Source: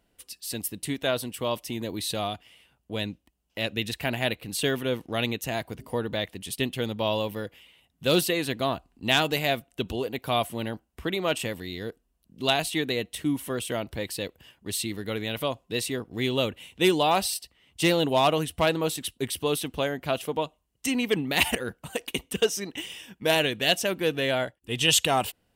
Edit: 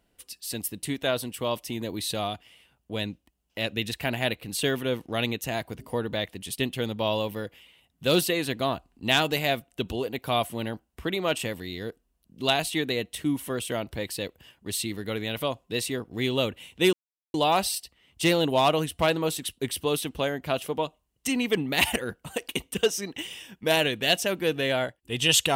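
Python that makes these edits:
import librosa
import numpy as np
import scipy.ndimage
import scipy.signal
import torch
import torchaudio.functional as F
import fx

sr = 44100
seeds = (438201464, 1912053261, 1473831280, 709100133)

y = fx.edit(x, sr, fx.insert_silence(at_s=16.93, length_s=0.41), tone=tone)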